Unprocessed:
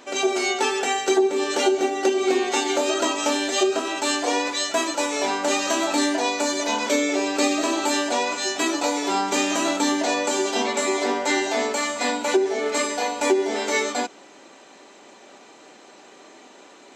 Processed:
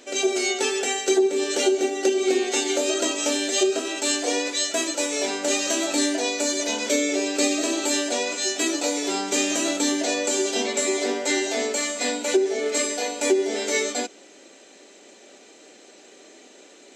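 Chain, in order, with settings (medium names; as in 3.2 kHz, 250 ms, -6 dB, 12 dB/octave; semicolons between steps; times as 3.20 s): ten-band graphic EQ 125 Hz -10 dB, 500 Hz +3 dB, 1 kHz -12 dB, 8 kHz +4 dB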